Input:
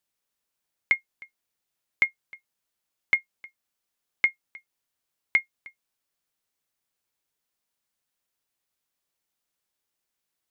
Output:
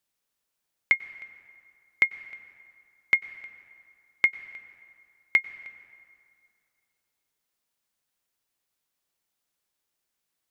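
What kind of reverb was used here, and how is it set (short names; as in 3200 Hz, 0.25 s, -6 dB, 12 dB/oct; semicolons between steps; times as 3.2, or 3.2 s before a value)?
plate-style reverb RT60 2.5 s, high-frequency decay 0.6×, pre-delay 85 ms, DRR 15 dB; gain +1 dB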